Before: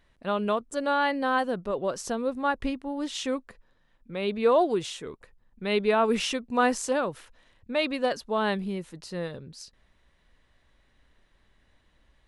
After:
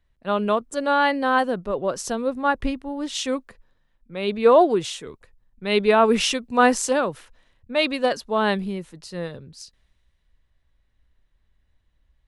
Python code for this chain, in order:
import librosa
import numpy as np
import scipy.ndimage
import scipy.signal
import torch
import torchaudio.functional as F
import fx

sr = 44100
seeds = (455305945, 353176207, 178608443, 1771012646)

y = fx.band_widen(x, sr, depth_pct=40)
y = F.gain(torch.from_numpy(y), 5.0).numpy()